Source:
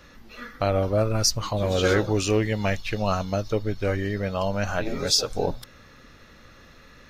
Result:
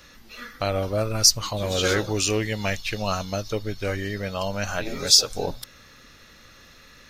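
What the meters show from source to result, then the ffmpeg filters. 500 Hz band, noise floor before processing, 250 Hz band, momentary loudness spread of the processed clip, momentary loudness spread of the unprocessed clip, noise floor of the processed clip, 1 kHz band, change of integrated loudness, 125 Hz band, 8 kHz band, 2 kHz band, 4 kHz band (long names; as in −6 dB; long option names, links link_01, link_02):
−2.5 dB, −51 dBFS, −3.0 dB, 14 LU, 7 LU, −51 dBFS, −1.5 dB, +1.5 dB, −3.0 dB, +6.5 dB, +1.0 dB, +5.5 dB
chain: -af "highshelf=frequency=2400:gain=11,volume=-3dB"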